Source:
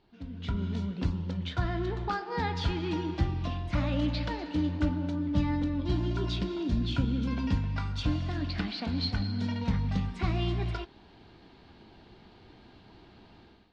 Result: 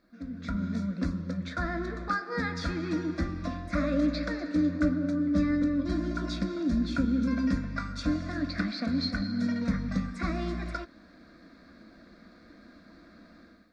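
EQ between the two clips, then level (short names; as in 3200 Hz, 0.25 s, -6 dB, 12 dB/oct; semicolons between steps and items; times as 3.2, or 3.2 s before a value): low shelf 74 Hz -11.5 dB; bell 780 Hz -12 dB 0.22 oct; fixed phaser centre 600 Hz, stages 8; +6.5 dB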